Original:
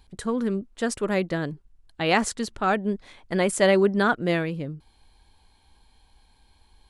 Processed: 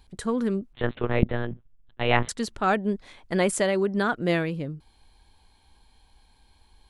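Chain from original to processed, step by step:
0:00.73–0:02.29: one-pitch LPC vocoder at 8 kHz 120 Hz
0:03.57–0:04.15: downward compressor, threshold −20 dBFS, peak gain reduction 6 dB

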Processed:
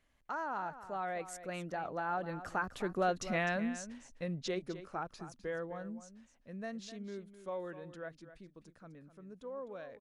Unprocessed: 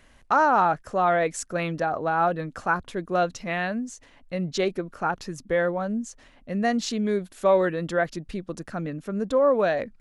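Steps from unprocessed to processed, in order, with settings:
source passing by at 0:03.29, 15 m/s, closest 4.9 metres
downward compressor 2 to 1, threshold −36 dBFS, peak gain reduction 9 dB
single-tap delay 255 ms −13 dB
level +1.5 dB

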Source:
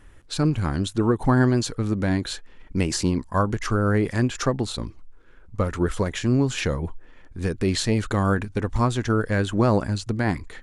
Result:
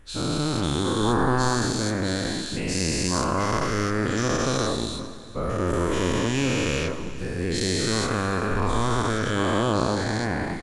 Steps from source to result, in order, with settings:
every bin's largest magnitude spread in time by 480 ms
on a send: single-tap delay 403 ms −18 dB
on the sum: dense smooth reverb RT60 2.7 s, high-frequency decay 0.9×, DRR 11.5 dB
level −8.5 dB

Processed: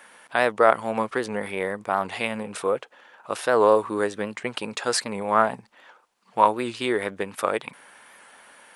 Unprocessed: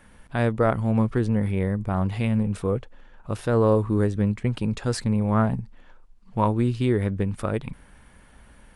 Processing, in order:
high-pass filter 600 Hz 12 dB per octave
wow of a warped record 78 rpm, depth 100 cents
level +8 dB

